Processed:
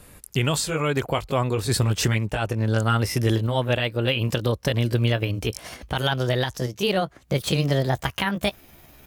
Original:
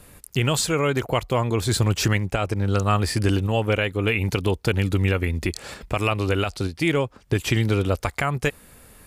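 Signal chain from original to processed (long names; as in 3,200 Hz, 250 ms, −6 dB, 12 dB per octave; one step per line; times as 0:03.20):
pitch glide at a constant tempo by +6 semitones starting unshifted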